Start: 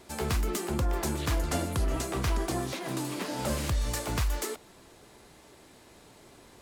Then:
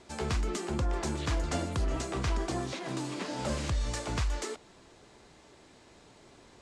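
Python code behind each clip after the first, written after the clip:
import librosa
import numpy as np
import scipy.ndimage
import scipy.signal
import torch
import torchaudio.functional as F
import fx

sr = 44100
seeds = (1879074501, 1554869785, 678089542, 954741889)

y = scipy.signal.sosfilt(scipy.signal.butter(4, 8000.0, 'lowpass', fs=sr, output='sos'), x)
y = F.gain(torch.from_numpy(y), -2.0).numpy()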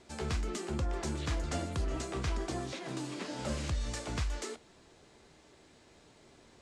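y = fx.peak_eq(x, sr, hz=980.0, db=-2.5, octaves=0.77)
y = fx.comb_fb(y, sr, f0_hz=77.0, decay_s=0.18, harmonics='all', damping=0.0, mix_pct=50)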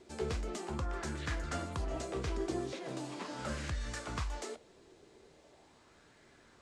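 y = fx.bell_lfo(x, sr, hz=0.4, low_hz=370.0, high_hz=1700.0, db=9)
y = F.gain(torch.from_numpy(y), -4.0).numpy()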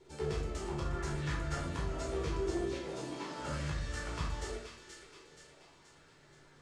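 y = fx.echo_wet_highpass(x, sr, ms=477, feedback_pct=52, hz=1800.0, wet_db=-5.5)
y = fx.room_shoebox(y, sr, seeds[0], volume_m3=870.0, walls='furnished', distance_m=4.4)
y = F.gain(torch.from_numpy(y), -6.5).numpy()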